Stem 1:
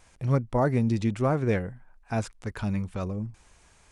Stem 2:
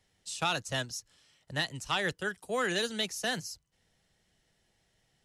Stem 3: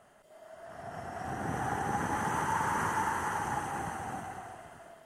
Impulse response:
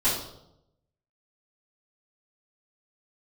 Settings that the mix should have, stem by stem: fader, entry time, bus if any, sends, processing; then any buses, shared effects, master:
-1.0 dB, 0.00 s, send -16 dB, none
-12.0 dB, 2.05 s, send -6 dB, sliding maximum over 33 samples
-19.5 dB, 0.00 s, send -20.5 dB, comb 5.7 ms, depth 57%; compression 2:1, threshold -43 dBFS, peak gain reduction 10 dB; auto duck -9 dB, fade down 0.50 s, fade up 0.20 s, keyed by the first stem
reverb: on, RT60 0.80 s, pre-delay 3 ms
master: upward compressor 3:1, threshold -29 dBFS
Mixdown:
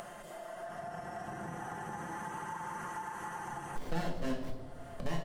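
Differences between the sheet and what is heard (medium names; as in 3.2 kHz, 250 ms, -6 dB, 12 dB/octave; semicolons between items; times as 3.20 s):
stem 1: muted; stem 2: entry 2.05 s -> 3.50 s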